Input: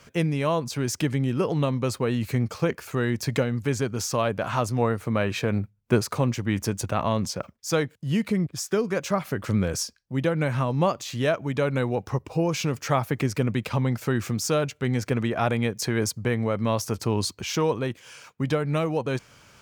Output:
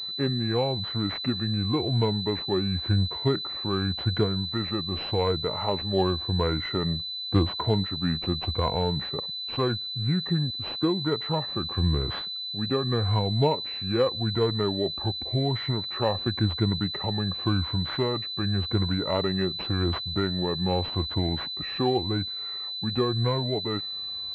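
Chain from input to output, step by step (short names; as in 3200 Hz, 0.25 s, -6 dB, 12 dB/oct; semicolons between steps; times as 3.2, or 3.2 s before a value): moving spectral ripple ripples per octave 1.8, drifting -1.1 Hz, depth 11 dB; wide varispeed 0.806×; pulse-width modulation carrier 4000 Hz; gain -3 dB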